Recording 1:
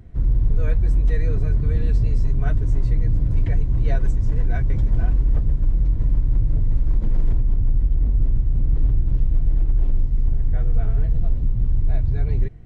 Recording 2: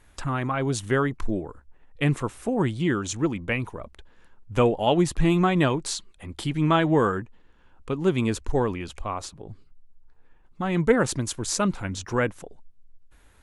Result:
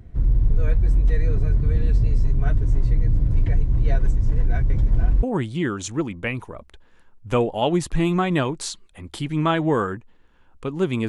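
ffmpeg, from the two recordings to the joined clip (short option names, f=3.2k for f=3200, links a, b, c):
-filter_complex "[0:a]apad=whole_dur=11.08,atrim=end=11.08,atrim=end=5.232[a];[1:a]atrim=start=2.478:end=8.33[b];[a][b]acrossfade=d=0.004:c1=hsin:c2=hsin"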